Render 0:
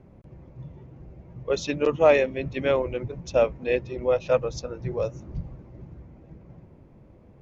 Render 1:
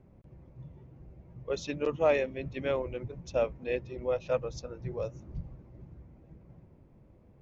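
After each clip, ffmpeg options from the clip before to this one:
-af "lowshelf=f=140:g=3,volume=0.398"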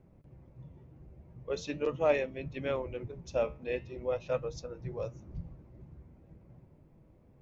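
-af "flanger=delay=6.1:depth=7.4:regen=76:speed=0.43:shape=sinusoidal,volume=1.33"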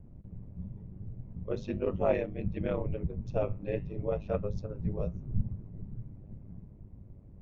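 -af "aemphasis=mode=reproduction:type=riaa,aeval=exprs='val(0)*sin(2*PI*51*n/s)':c=same"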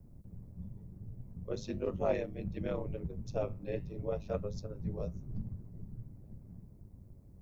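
-filter_complex "[0:a]acrossover=split=120|1100[s0][s1][s2];[s0]asoftclip=type=hard:threshold=0.0224[s3];[s2]aexciter=amount=5:drive=3:freq=4000[s4];[s3][s1][s4]amix=inputs=3:normalize=0,volume=0.631"

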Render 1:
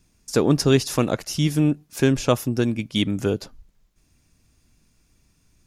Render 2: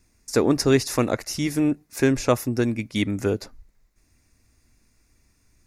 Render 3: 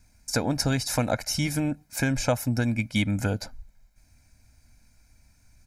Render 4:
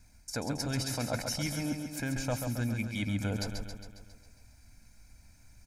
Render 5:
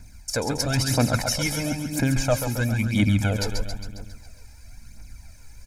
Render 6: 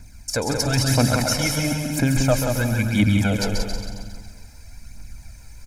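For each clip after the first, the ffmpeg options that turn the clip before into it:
-af "equalizer=f=160:t=o:w=0.33:g=-12,equalizer=f=2000:t=o:w=0.33:g=6,equalizer=f=3150:t=o:w=0.33:g=-10"
-af "acompressor=threshold=0.0891:ratio=3,aecho=1:1:1.3:0.8"
-af "areverse,acompressor=threshold=0.0282:ratio=6,areverse,aecho=1:1:136|272|408|544|680|816|952|1088:0.501|0.296|0.174|0.103|0.0607|0.0358|0.0211|0.0125"
-af "aphaser=in_gain=1:out_gain=1:delay=2.5:decay=0.52:speed=1:type=triangular,volume=2.66"
-af "aecho=1:1:181|362|543|724:0.501|0.16|0.0513|0.0164,volume=1.26"

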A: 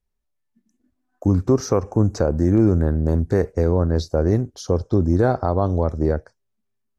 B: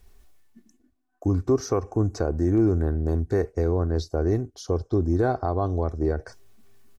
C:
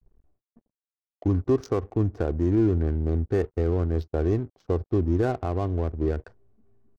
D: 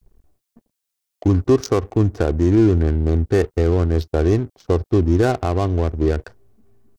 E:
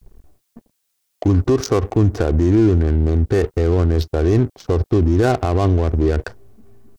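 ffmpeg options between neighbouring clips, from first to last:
-af "areverse,acompressor=mode=upward:threshold=0.0501:ratio=2.5,areverse,aecho=1:1:2.7:0.42,volume=0.531"
-af "aeval=exprs='sgn(val(0))*max(abs(val(0))-0.00237,0)':c=same,adynamicequalizer=threshold=0.01:dfrequency=870:dqfactor=0.92:tfrequency=870:tqfactor=0.92:attack=5:release=100:ratio=0.375:range=3:mode=cutabove:tftype=bell,adynamicsmooth=sensitivity=8:basefreq=590"
-af "highshelf=f=2600:g=10.5,volume=2.24"
-af "alimiter=limit=0.15:level=0:latency=1:release=53,volume=2.82"

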